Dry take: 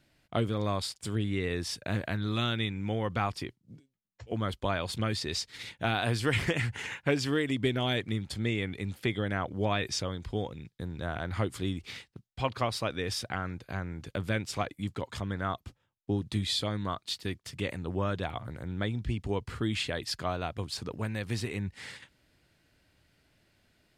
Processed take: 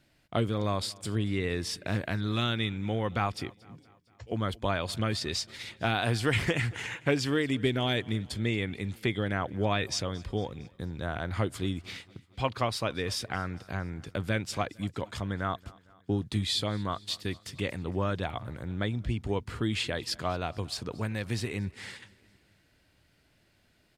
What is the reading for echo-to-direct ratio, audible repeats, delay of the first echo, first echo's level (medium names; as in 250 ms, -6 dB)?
-22.0 dB, 3, 228 ms, -23.5 dB